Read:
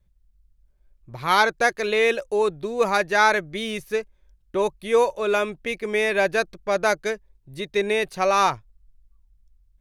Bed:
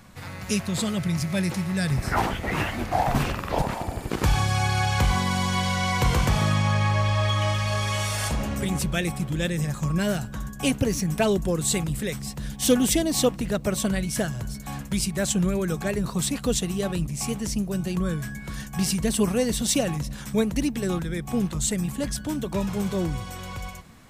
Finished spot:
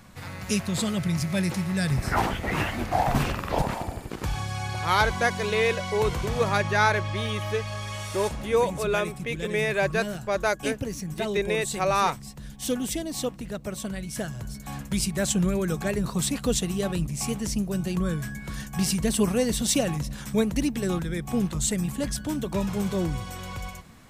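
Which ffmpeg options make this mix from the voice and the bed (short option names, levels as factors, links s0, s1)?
-filter_complex "[0:a]adelay=3600,volume=0.631[s0];[1:a]volume=2.24,afade=t=out:st=3.76:d=0.39:silence=0.421697,afade=t=in:st=13.96:d=1.05:silence=0.421697[s1];[s0][s1]amix=inputs=2:normalize=0"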